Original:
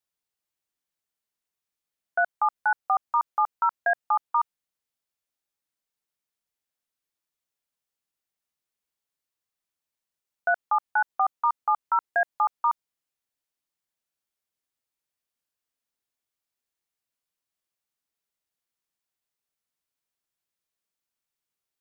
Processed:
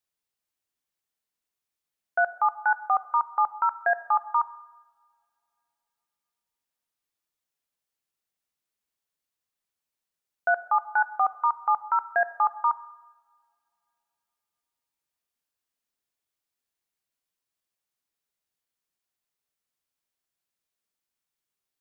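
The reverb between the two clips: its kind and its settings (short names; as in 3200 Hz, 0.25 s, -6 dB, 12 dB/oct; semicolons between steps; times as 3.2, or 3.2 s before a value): two-slope reverb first 0.99 s, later 3.3 s, from -27 dB, DRR 14.5 dB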